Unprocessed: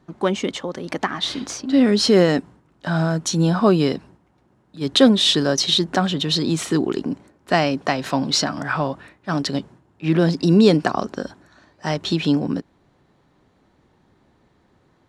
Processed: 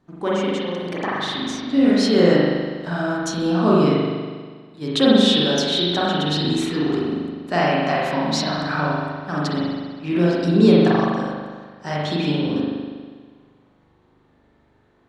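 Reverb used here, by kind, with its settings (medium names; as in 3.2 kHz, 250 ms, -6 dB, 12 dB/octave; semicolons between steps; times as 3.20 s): spring tank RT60 1.6 s, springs 40 ms, chirp 25 ms, DRR -6.5 dB; trim -6.5 dB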